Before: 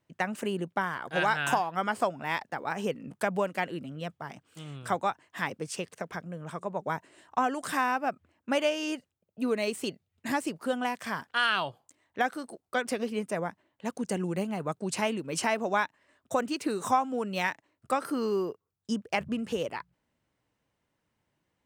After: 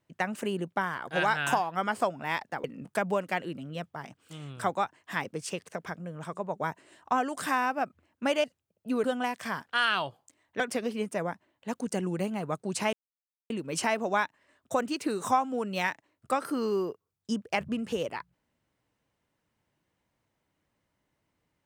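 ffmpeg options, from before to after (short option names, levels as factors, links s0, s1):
-filter_complex "[0:a]asplit=6[s0][s1][s2][s3][s4][s5];[s0]atrim=end=2.642[s6];[s1]atrim=start=2.898:end=8.702[s7];[s2]atrim=start=8.958:end=9.562[s8];[s3]atrim=start=10.648:end=12.212[s9];[s4]atrim=start=12.768:end=15.1,asetpts=PTS-STARTPTS,afade=t=out:st=2.328:d=0.004:c=hsin,apad=pad_dur=0.57[s10];[s5]atrim=start=15.1,asetpts=PTS-STARTPTS,afade=t=in:d=0.004:c=hsin[s11];[s6][s7]acrossfade=d=0.004:c1=hsin:c2=hsin[s12];[s12][s8]acrossfade=d=0.004:c1=hsin:c2=hsin[s13];[s13][s9]acrossfade=d=0.004:c1=hsin:c2=hsin[s14];[s10][s11]concat=n=2:v=0:a=1[s15];[s14][s15]acrossfade=d=0.004:c1=hsin:c2=hsin"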